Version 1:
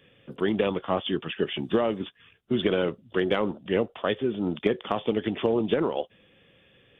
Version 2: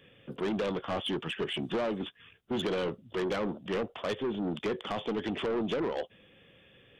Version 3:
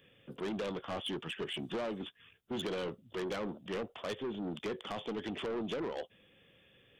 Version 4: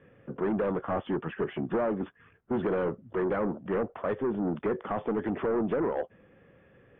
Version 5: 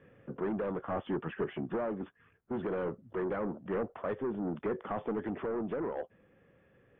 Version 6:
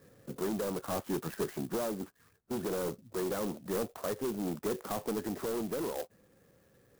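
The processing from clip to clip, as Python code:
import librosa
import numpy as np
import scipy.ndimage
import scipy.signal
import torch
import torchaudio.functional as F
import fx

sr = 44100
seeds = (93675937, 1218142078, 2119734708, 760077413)

y1 = 10.0 ** (-27.0 / 20.0) * np.tanh(x / 10.0 ** (-27.0 / 20.0))
y2 = fx.high_shelf(y1, sr, hz=5800.0, db=8.0)
y2 = y2 * 10.0 ** (-6.0 / 20.0)
y3 = scipy.signal.sosfilt(scipy.signal.butter(4, 1700.0, 'lowpass', fs=sr, output='sos'), y2)
y3 = y3 * 10.0 ** (9.0 / 20.0)
y4 = fx.rider(y3, sr, range_db=4, speed_s=0.5)
y4 = y4 * 10.0 ** (-5.0 / 20.0)
y5 = fx.clock_jitter(y4, sr, seeds[0], jitter_ms=0.08)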